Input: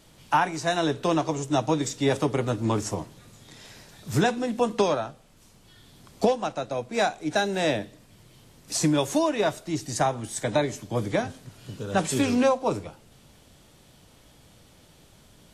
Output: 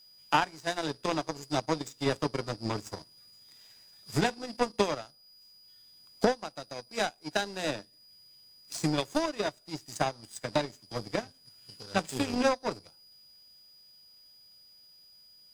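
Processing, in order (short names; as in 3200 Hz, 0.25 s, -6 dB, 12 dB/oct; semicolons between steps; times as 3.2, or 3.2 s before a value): whine 4900 Hz -37 dBFS; power-law curve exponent 2; mismatched tape noise reduction encoder only; gain +1.5 dB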